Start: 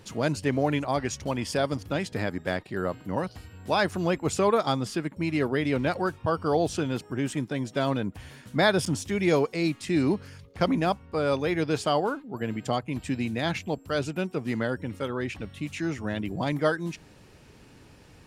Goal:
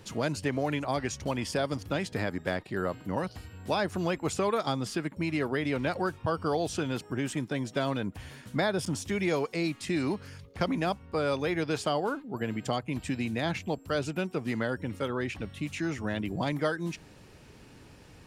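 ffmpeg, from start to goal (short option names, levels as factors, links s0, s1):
-filter_complex "[0:a]acrossover=split=680|1400[s0][s1][s2];[s0]acompressor=threshold=0.0398:ratio=4[s3];[s1]acompressor=threshold=0.0178:ratio=4[s4];[s2]acompressor=threshold=0.0178:ratio=4[s5];[s3][s4][s5]amix=inputs=3:normalize=0"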